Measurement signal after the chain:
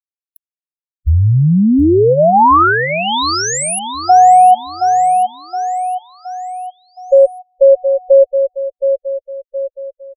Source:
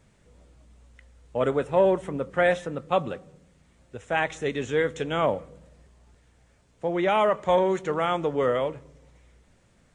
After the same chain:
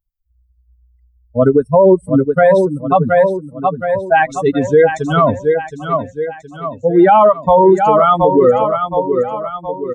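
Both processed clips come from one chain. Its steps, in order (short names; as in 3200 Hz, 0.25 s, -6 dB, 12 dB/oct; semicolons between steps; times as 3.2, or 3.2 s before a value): per-bin expansion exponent 3; resonant high shelf 1600 Hz -9.5 dB, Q 1.5; feedback echo 0.719 s, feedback 47%, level -10 dB; maximiser +24.5 dB; gain -1 dB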